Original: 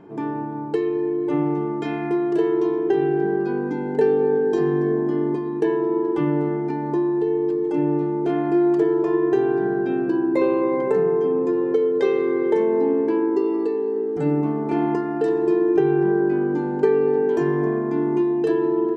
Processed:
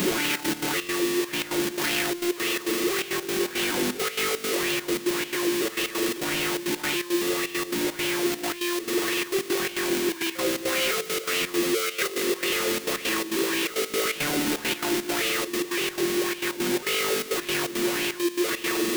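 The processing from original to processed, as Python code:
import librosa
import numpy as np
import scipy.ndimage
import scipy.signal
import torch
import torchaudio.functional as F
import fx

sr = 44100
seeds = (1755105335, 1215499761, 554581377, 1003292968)

y = np.sign(x) * np.sqrt(np.mean(np.square(x)))
y = fx.peak_eq(y, sr, hz=860.0, db=-13.5, octaves=0.64)
y = 10.0 ** (-24.0 / 20.0) * np.tanh(y / 10.0 ** (-24.0 / 20.0))
y = y + 0.38 * np.pad(y, (int(5.5 * sr / 1000.0), 0))[:len(y)]
y = fx.rider(y, sr, range_db=10, speed_s=0.5)
y = fx.tilt_eq(y, sr, slope=2.0)
y = fx.hum_notches(y, sr, base_hz=50, count=4)
y = fx.step_gate(y, sr, bpm=169, pattern='xxxx.x.xx.', floor_db=-12.0, edge_ms=4.5)
y = fx.bell_lfo(y, sr, hz=1.8, low_hz=220.0, high_hz=2900.0, db=9)
y = y * librosa.db_to_amplitude(-1.5)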